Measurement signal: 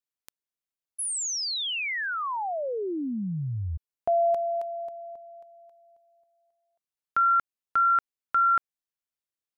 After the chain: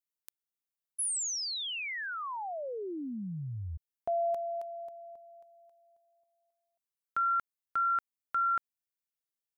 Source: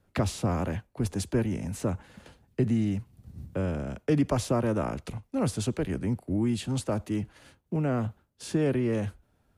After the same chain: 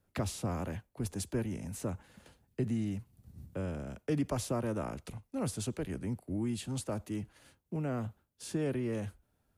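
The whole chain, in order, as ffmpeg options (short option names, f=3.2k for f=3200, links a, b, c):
-af "highshelf=f=8.2k:g=9.5,volume=-7.5dB"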